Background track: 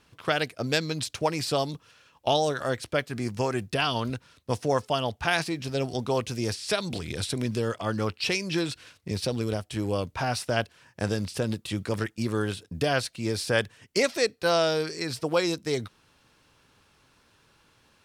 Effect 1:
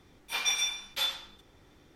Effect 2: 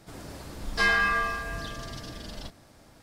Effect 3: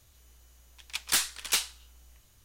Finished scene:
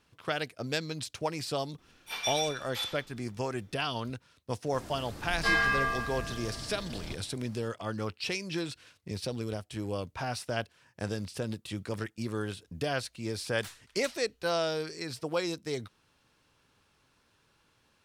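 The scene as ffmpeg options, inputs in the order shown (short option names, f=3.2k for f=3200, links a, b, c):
-filter_complex "[0:a]volume=-6.5dB[a];[1:a]afreqshift=-26[b];[3:a]equalizer=f=15k:t=o:w=2.5:g=-6.5[c];[b]atrim=end=1.95,asetpts=PTS-STARTPTS,volume=-5dB,afade=t=in:d=0.004:c=hsin,afade=t=out:st=1.946:d=0.004:c=hsin,adelay=1780[d];[2:a]atrim=end=3.02,asetpts=PTS-STARTPTS,volume=-3dB,afade=t=in:d=0.004:c=hsin,afade=t=out:st=3.016:d=0.004:c=hsin,adelay=4660[e];[c]atrim=end=2.44,asetpts=PTS-STARTPTS,volume=-16.5dB,afade=t=in:d=0.004:c=hsin,afade=t=out:st=2.436:d=0.004:c=hsin,adelay=12510[f];[a][d][e][f]amix=inputs=4:normalize=0"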